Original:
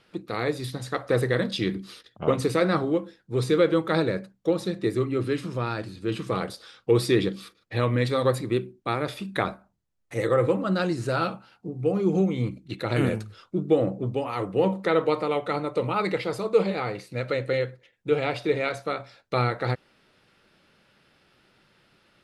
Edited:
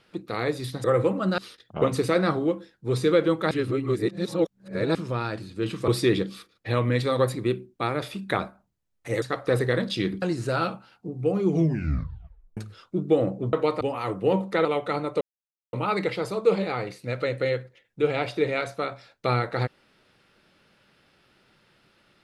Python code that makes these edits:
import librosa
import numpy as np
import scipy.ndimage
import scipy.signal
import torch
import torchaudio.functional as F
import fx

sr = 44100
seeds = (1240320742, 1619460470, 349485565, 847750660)

y = fx.edit(x, sr, fx.swap(start_s=0.84, length_s=1.0, other_s=10.28, other_length_s=0.54),
    fx.reverse_span(start_s=3.97, length_s=1.44),
    fx.cut(start_s=6.34, length_s=0.6),
    fx.tape_stop(start_s=12.07, length_s=1.1),
    fx.move(start_s=14.97, length_s=0.28, to_s=14.13),
    fx.insert_silence(at_s=15.81, length_s=0.52), tone=tone)